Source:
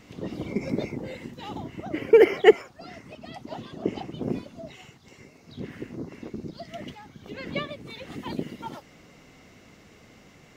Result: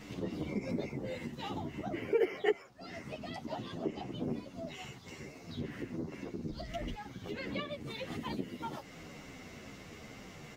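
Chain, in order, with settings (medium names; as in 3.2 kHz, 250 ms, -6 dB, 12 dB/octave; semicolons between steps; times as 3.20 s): 6.49–6.94 s: octave divider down 2 oct, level +2 dB; compression 2:1, threshold -44 dBFS, peak gain reduction 19 dB; endless flanger 10.3 ms -2.3 Hz; trim +6 dB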